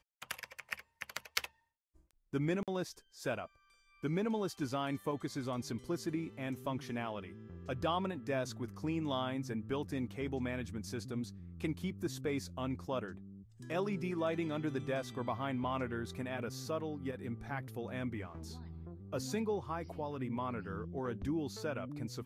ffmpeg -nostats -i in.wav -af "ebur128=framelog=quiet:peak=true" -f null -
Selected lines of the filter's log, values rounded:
Integrated loudness:
  I:         -39.1 LUFS
  Threshold: -49.3 LUFS
Loudness range:
  LRA:         2.9 LU
  Threshold: -59.2 LUFS
  LRA low:   -40.9 LUFS
  LRA high:  -37.9 LUFS
True peak:
  Peak:      -12.4 dBFS